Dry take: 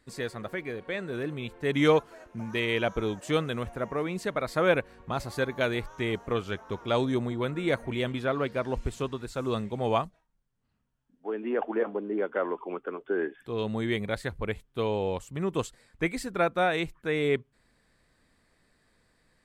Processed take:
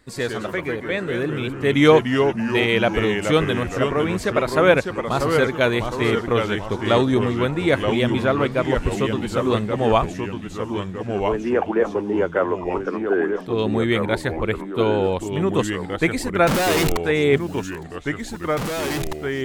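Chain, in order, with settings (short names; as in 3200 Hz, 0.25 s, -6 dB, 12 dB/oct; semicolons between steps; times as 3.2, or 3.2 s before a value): 16.47–16.97 infinite clipping; vibrato 5.3 Hz 7.3 cents; echoes that change speed 81 ms, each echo -2 st, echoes 3, each echo -6 dB; on a send: thin delay 0.861 s, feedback 77%, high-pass 3700 Hz, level -22 dB; on the sum: gain +8.5 dB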